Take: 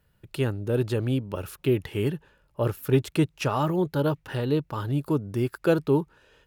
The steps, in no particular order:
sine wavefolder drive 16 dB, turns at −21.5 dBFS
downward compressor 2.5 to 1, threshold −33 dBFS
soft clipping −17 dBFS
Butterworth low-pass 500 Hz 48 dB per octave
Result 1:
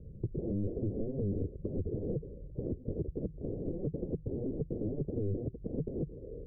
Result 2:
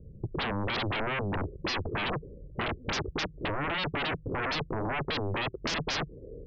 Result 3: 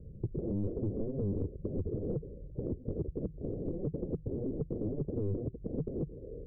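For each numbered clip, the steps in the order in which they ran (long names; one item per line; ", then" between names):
sine wavefolder, then soft clipping, then Butterworth low-pass, then downward compressor
soft clipping, then Butterworth low-pass, then sine wavefolder, then downward compressor
sine wavefolder, then Butterworth low-pass, then soft clipping, then downward compressor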